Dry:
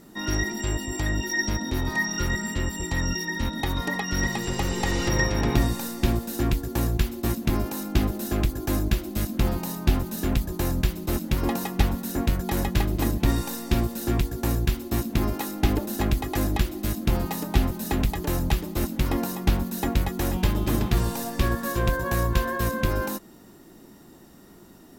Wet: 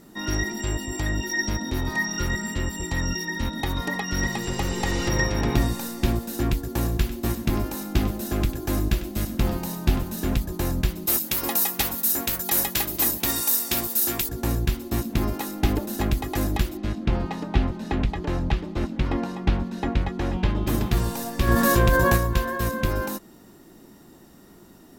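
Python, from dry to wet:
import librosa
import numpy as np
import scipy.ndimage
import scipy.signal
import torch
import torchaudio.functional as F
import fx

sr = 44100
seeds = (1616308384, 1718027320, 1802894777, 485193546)

y = fx.echo_single(x, sr, ms=98, db=-13.0, at=(6.68, 10.35))
y = fx.riaa(y, sr, side='recording', at=(11.06, 14.29))
y = fx.lowpass(y, sr, hz=3600.0, slope=12, at=(16.77, 20.67))
y = fx.env_flatten(y, sr, amount_pct=70, at=(21.47, 22.16), fade=0.02)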